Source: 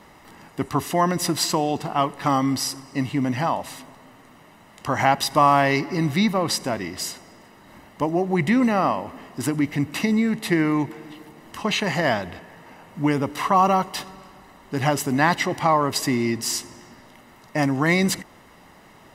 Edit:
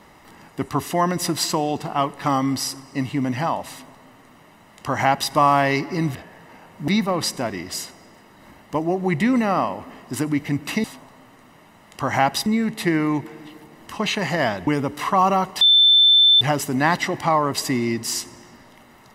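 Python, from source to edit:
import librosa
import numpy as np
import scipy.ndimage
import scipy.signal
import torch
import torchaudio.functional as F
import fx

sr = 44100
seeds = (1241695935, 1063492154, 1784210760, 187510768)

y = fx.edit(x, sr, fx.duplicate(start_s=3.7, length_s=1.62, to_s=10.11),
    fx.move(start_s=12.32, length_s=0.73, to_s=6.15),
    fx.bleep(start_s=13.99, length_s=0.8, hz=3540.0, db=-10.0), tone=tone)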